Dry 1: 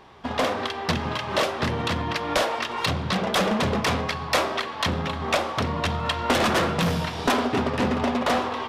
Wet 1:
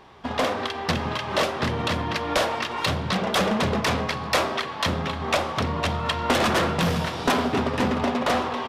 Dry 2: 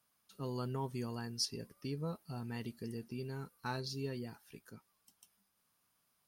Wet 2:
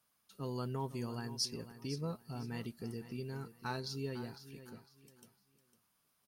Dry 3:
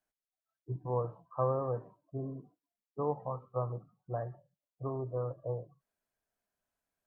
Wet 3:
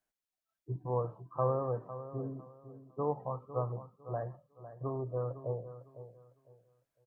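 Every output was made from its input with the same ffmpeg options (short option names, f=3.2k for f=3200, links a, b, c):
-af "aecho=1:1:504|1008|1512:0.224|0.0582|0.0151"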